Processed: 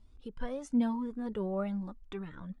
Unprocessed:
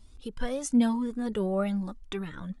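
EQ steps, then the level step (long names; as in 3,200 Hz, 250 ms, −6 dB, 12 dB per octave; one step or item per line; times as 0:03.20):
low-pass filter 1,900 Hz 6 dB per octave
dynamic equaliser 1,000 Hz, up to +5 dB, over −54 dBFS, Q 5.5
−5.5 dB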